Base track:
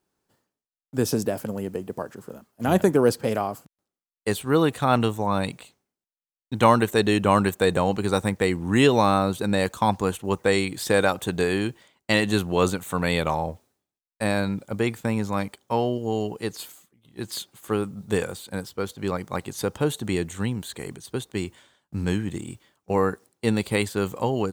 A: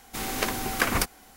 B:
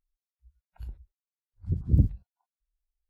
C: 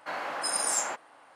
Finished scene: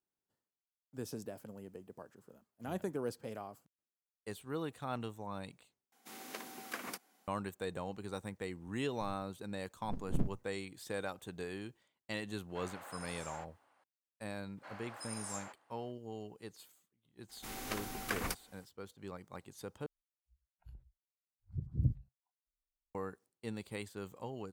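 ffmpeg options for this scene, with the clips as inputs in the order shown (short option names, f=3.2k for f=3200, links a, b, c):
-filter_complex "[1:a]asplit=2[a][b];[2:a]asplit=2[c][d];[3:a]asplit=2[e][f];[0:a]volume=-19.5dB[g];[a]highpass=f=180:w=0.5412,highpass=f=180:w=1.3066[h];[c]aeval=exprs='abs(val(0))':c=same[i];[e]acrossover=split=3500[j][k];[k]acompressor=threshold=-33dB:ratio=4:attack=1:release=60[l];[j][l]amix=inputs=2:normalize=0[m];[d]equalizer=f=130:w=4.2:g=10.5[n];[g]asplit=3[o][p][q];[o]atrim=end=5.924[r];[h]atrim=end=1.36,asetpts=PTS-STARTPTS,volume=-18dB[s];[p]atrim=start=7.276:end=19.864[t];[n]atrim=end=3.09,asetpts=PTS-STARTPTS,volume=-14.5dB[u];[q]atrim=start=22.946[v];[i]atrim=end=3.09,asetpts=PTS-STARTPTS,volume=-10dB,afade=t=in:d=0.004:c=hsin,afade=t=out:st=3.086:d=0.004:c=hsin,adelay=8210[w];[m]atrim=end=1.35,asetpts=PTS-STARTPTS,volume=-16.5dB,afade=t=in:d=0.004:c=hsin,afade=t=out:st=1.346:d=0.004:c=hsin,adelay=12490[x];[f]atrim=end=1.35,asetpts=PTS-STARTPTS,volume=-16.5dB,afade=t=in:d=0.004:c=hsin,afade=t=out:st=1.346:d=0.004:c=hsin,adelay=14570[y];[b]atrim=end=1.36,asetpts=PTS-STARTPTS,volume=-13dB,afade=t=in:d=0.004:c=hsin,afade=t=out:st=1.356:d=0.004:c=hsin,adelay=17290[z];[r][s]acrossfade=d=0.004:c1=hsin:c2=hsin[aa];[aa][t]acrossfade=d=0.004:c1=hsin:c2=hsin[ab];[ab][u]acrossfade=d=0.004:c1=hsin:c2=hsin[ac];[ac][v]acrossfade=d=0.004:c1=hsin:c2=hsin[ad];[ad][w][x][y][z]amix=inputs=5:normalize=0"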